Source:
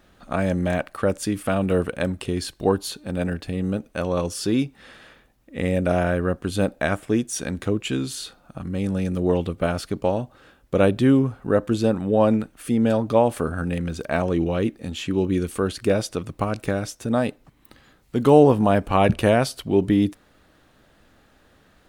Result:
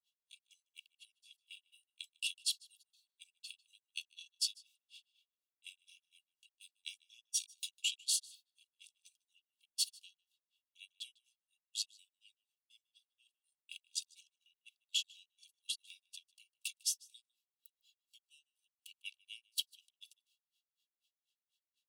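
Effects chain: grains 0.153 s, grains 4.1/s, spray 17 ms, pitch spread up and down by 0 st; compressor 5:1, threshold -31 dBFS, peak gain reduction 19.5 dB; steep high-pass 2700 Hz 96 dB/oct; comb 1.8 ms, depth 71%; limiter -31.5 dBFS, peak gain reduction 11 dB; echo 0.153 s -21.5 dB; three-band expander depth 100%; gain +1 dB

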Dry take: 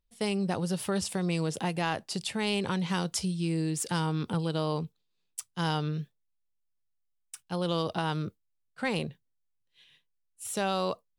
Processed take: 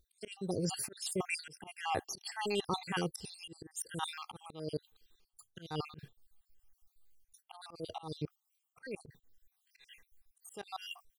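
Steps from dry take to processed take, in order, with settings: random spectral dropouts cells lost 62%; high shelf 9400 Hz +8.5 dB; comb 2.5 ms, depth 44%; reverse; compressor 6:1, threshold -47 dBFS, peak gain reduction 19 dB; reverse; auto swell 0.286 s; gain +14 dB

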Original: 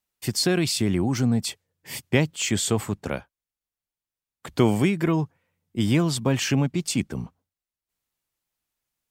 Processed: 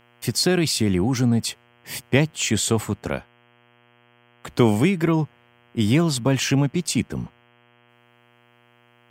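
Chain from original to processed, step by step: buzz 120 Hz, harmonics 27, -60 dBFS -2 dB/oct; gain +2.5 dB

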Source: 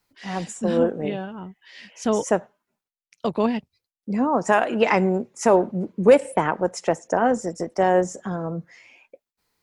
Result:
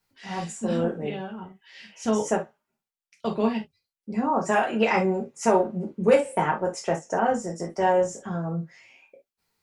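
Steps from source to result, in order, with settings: non-linear reverb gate 90 ms falling, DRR -1.5 dB; gain -6 dB

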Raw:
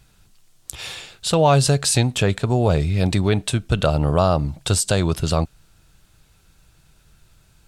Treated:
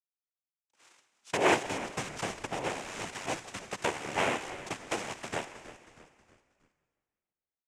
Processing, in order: rattling part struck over -19 dBFS, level -11 dBFS; Bessel high-pass 490 Hz, order 2; air absorption 340 m; power-law curve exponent 2; in parallel at +2.5 dB: compressor, threshold -39 dBFS, peak gain reduction 20.5 dB; on the sum: reverb RT60 2.0 s, pre-delay 43 ms, DRR 14 dB; noise vocoder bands 4; bell 4400 Hz -4 dB 0.32 oct; frequency-shifting echo 0.318 s, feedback 44%, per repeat -110 Hz, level -15.5 dB; gain -2.5 dB

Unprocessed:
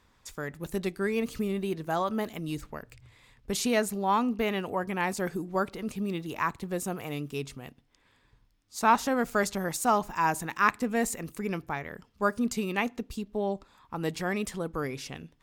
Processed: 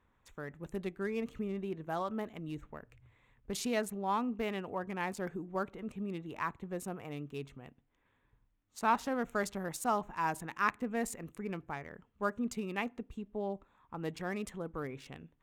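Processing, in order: Wiener smoothing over 9 samples; gain -7 dB

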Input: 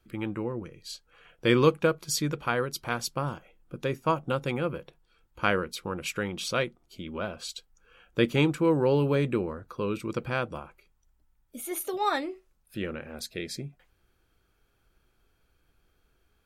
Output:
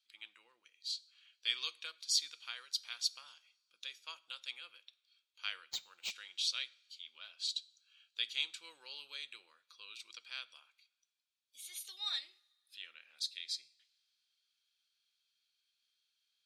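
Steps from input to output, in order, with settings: ladder band-pass 4500 Hz, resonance 50%; two-slope reverb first 0.51 s, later 2.4 s, from -21 dB, DRR 16.5 dB; 5.7–6.11 decimation joined by straight lines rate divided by 4×; gain +8 dB

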